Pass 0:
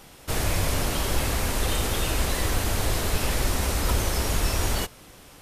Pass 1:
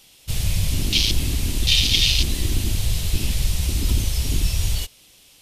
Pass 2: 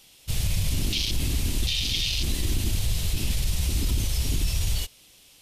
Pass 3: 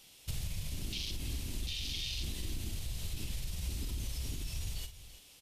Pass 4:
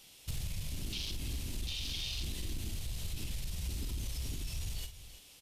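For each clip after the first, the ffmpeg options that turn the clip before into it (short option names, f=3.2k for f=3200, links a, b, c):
-af "highshelf=f=2.1k:t=q:w=1.5:g=11.5,afwtdn=0.1,volume=5dB"
-af "alimiter=limit=-13.5dB:level=0:latency=1:release=18,volume=-2.5dB"
-filter_complex "[0:a]acompressor=threshold=-30dB:ratio=10,asplit=2[a][b];[b]aecho=0:1:47|330:0.335|0.188[c];[a][c]amix=inputs=2:normalize=0,volume=-4.5dB"
-af "asoftclip=type=tanh:threshold=-29.5dB,volume=1dB"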